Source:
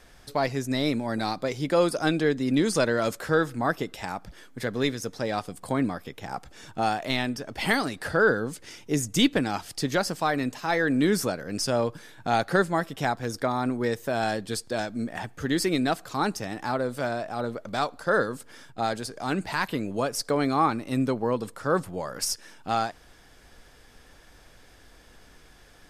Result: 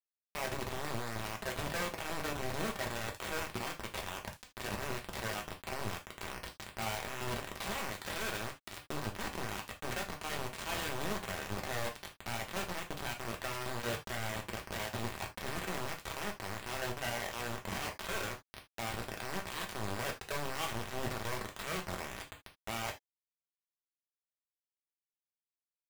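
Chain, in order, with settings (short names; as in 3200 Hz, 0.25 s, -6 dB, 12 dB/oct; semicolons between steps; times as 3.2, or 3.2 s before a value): CVSD 16 kbps; HPF 61 Hz 12 dB/oct; gate -47 dBFS, range -18 dB; band shelf 730 Hz +9 dB; transient shaper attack -12 dB, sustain +10 dB; compressor 6:1, threshold -35 dBFS, peak gain reduction 22 dB; limiter -34 dBFS, peak gain reduction 11 dB; requantised 6-bit, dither none; low shelf 110 Hz +7 dB; non-linear reverb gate 0.1 s falling, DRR 1 dB; gain +1 dB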